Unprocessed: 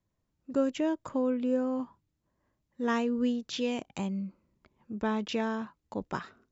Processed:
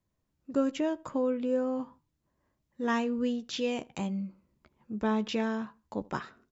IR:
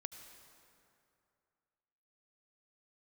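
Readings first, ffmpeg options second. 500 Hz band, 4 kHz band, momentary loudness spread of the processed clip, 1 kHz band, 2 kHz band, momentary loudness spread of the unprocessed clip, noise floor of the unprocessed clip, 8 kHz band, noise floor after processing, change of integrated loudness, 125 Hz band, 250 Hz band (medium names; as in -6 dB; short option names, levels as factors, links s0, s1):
+0.5 dB, +0.5 dB, 9 LU, +0.5 dB, +0.5 dB, 10 LU, -81 dBFS, no reading, -80 dBFS, 0.0 dB, +0.5 dB, -0.5 dB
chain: -filter_complex "[0:a]asplit=2[s0][s1];[s1]adelay=14,volume=0.282[s2];[s0][s2]amix=inputs=2:normalize=0,asplit=2[s3][s4];[s4]adelay=78,lowpass=f=2700:p=1,volume=0.0708,asplit=2[s5][s6];[s6]adelay=78,lowpass=f=2700:p=1,volume=0.32[s7];[s3][s5][s7]amix=inputs=3:normalize=0"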